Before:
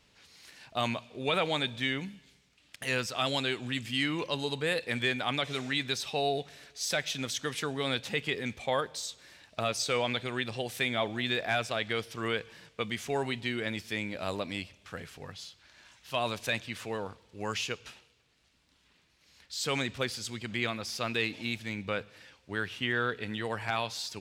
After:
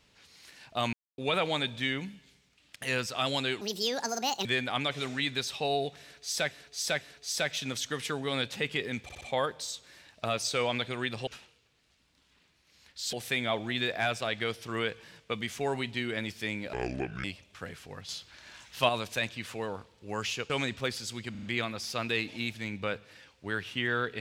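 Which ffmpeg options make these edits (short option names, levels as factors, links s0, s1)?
-filter_complex "[0:a]asplit=20[s0][s1][s2][s3][s4][s5][s6][s7][s8][s9][s10][s11][s12][s13][s14][s15][s16][s17][s18][s19];[s0]atrim=end=0.93,asetpts=PTS-STARTPTS,afade=t=out:st=0.926:d=0.004:c=hsin[s20];[s1]atrim=start=0.93:end=1.18,asetpts=PTS-STARTPTS,volume=0[s21];[s2]atrim=start=1.18:end=3.614,asetpts=PTS-STARTPTS,afade=t=in:d=0.004:c=hsin[s22];[s3]atrim=start=3.61:end=4.98,asetpts=PTS-STARTPTS,asetrate=71883,aresample=44100[s23];[s4]atrim=start=4.976:end=7.042[s24];[s5]atrim=start=6.538:end=7.042[s25];[s6]atrim=start=6.538:end=8.622[s26];[s7]atrim=start=8.558:end=8.622[s27];[s8]atrim=start=8.558:end=8.622[s28];[s9]atrim=start=8.558:end=10.622[s29];[s10]atrim=start=17.808:end=19.672[s30];[s11]atrim=start=10.618:end=14.224[s31];[s12]atrim=start=14.22:end=14.55,asetpts=PTS-STARTPTS,asetrate=28665,aresample=44100,atrim=end_sample=22389,asetpts=PTS-STARTPTS[s32];[s13]atrim=start=14.546:end=15.402[s33];[s14]atrim=start=15.398:end=16.202,asetpts=PTS-STARTPTS,volume=2.11[s34];[s15]atrim=start=16.198:end=17.812[s35];[s16]atrim=start=19.668:end=20.522[s36];[s17]atrim=start=20.478:end=20.522[s37];[s18]atrim=start=20.478:end=20.522[s38];[s19]atrim=start=20.478[s39];[s20][s21][s22]concat=n=3:v=0:a=1[s40];[s40][s23]acrossfade=d=0.004:c1=hsin:c2=hsin[s41];[s41][s24]acrossfade=d=0.004:c1=hsin:c2=hsin[s42];[s42][s25]acrossfade=d=0.004:c1=hsin:c2=hsin[s43];[s43][s26]acrossfade=d=0.004:c1=hsin:c2=hsin[s44];[s44][s27]acrossfade=d=0.004:c1=hsin:c2=hsin[s45];[s45][s28]acrossfade=d=0.004:c1=hsin:c2=hsin[s46];[s46][s29]acrossfade=d=0.004:c1=hsin:c2=hsin[s47];[s47][s30]acrossfade=d=0.004:c1=hsin:c2=hsin[s48];[s48][s31]acrossfade=d=0.004:c1=hsin:c2=hsin[s49];[s49][s32]acrossfade=d=0.004:c1=hsin:c2=hsin[s50];[s50][s33]acrossfade=d=0.004:c1=hsin:c2=hsin[s51];[s51][s34]acrossfade=d=0.004:c1=hsin:c2=hsin[s52];[s52][s35]acrossfade=d=0.004:c1=hsin:c2=hsin[s53];[s53][s36]acrossfade=d=0.004:c1=hsin:c2=hsin[s54];[s54][s37]acrossfade=d=0.004:c1=hsin:c2=hsin[s55];[s55][s38]acrossfade=d=0.004:c1=hsin:c2=hsin[s56];[s56][s39]acrossfade=d=0.004:c1=hsin:c2=hsin"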